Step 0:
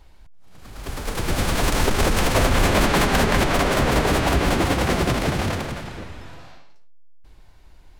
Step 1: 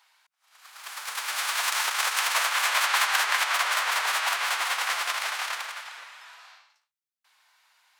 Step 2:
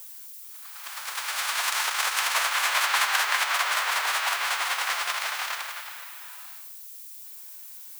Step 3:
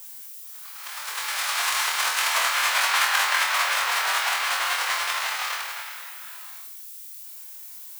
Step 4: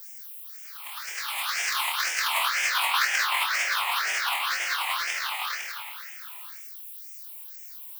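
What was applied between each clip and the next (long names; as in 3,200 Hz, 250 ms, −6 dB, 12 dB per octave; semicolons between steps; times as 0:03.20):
high-pass filter 1,000 Hz 24 dB per octave
background noise violet −43 dBFS
flutter between parallel walls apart 4.1 metres, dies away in 0.36 s
all-pass phaser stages 6, 2 Hz, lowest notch 400–1,100 Hz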